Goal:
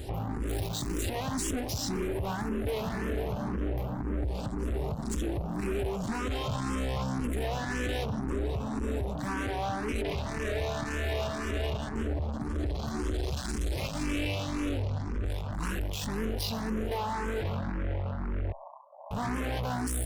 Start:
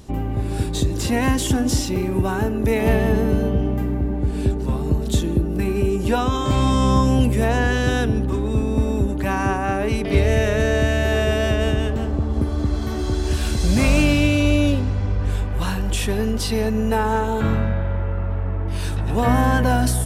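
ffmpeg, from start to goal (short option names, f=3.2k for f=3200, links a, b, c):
-filter_complex "[0:a]acontrast=80,alimiter=limit=-14dB:level=0:latency=1:release=351,acontrast=76,asettb=1/sr,asplit=3[a][b][c];[a]atrim=end=0.484[d];[b]atrim=start=0.48:end=1,asetpts=PTS-STARTPTS,afade=t=in:d=0.004:c=qsin,afade=t=out:st=0.516:d=0.004:c=qsin,acrusher=bits=5:dc=4:mix=0:aa=0.000001[e];[c]atrim=start=0.996[f];[d][e]acrossfade=d=0.004:c1=hsin:c2=qsin[g];[g][f]acrossfade=d=0.004:c1=qsin:c2=hsin,aeval=exprs='(tanh(11.2*val(0)+0.15)-tanh(0.15))/11.2':c=same,asettb=1/sr,asplit=3[h][i][j];[h]atrim=end=18.524[k];[i]atrim=start=18.52:end=19.11,asetpts=PTS-STARTPTS,afade=t=in:d=0.004:c=qsin,afade=t=out:st=0.586:d=0.004:c=qsin,asuperpass=centerf=790:order=20:qfactor=1.4[l];[j]atrim=start=19.106[m];[k][l]acrossfade=d=0.004:c1=hsin:c2=qsin[n];[n][m]acrossfade=d=0.004:c1=qsin:c2=hsin,asplit=2[o][p];[p]afreqshift=1.9[q];[o][q]amix=inputs=2:normalize=1,volume=-6dB"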